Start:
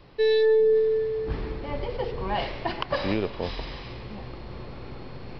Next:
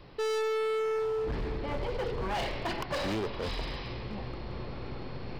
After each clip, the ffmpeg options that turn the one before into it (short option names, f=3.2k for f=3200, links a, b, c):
-af "volume=29dB,asoftclip=hard,volume=-29dB"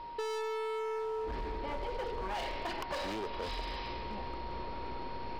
-af "equalizer=f=130:t=o:w=1.2:g=-12,acompressor=threshold=-35dB:ratio=6,aeval=exprs='val(0)+0.00794*sin(2*PI*940*n/s)':c=same"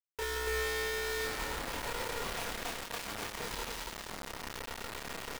-filter_complex "[0:a]aecho=1:1:4.3:0.6,acrusher=bits=4:mix=0:aa=0.000001,asplit=2[a][b];[b]aecho=0:1:29.15|174.9|282.8:0.891|0.447|0.794[c];[a][c]amix=inputs=2:normalize=0,volume=-7dB"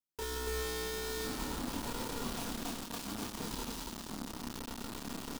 -af "equalizer=f=250:t=o:w=1:g=12,equalizer=f=500:t=o:w=1:g=-7,equalizer=f=2k:t=o:w=1:g=-10"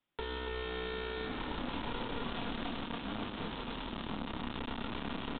-filter_complex "[0:a]acrossover=split=430|3100[a][b][c];[a]acompressor=threshold=-53dB:ratio=4[d];[b]acompressor=threshold=-55dB:ratio=4[e];[c]acompressor=threshold=-50dB:ratio=4[f];[d][e][f]amix=inputs=3:normalize=0,aresample=8000,aeval=exprs='clip(val(0),-1,0.00168)':c=same,aresample=44100,volume=14dB"